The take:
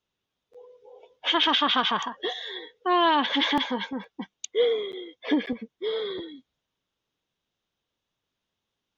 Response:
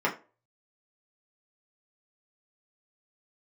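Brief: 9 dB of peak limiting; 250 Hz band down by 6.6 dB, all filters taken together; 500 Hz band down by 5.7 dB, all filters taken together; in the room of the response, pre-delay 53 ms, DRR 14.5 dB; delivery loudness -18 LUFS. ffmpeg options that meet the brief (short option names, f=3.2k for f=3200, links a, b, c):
-filter_complex "[0:a]equalizer=f=250:t=o:g=-6.5,equalizer=f=500:t=o:g=-5,alimiter=limit=-20dB:level=0:latency=1,asplit=2[a][b];[1:a]atrim=start_sample=2205,adelay=53[c];[b][c]afir=irnorm=-1:irlink=0,volume=-27dB[d];[a][d]amix=inputs=2:normalize=0,volume=13dB"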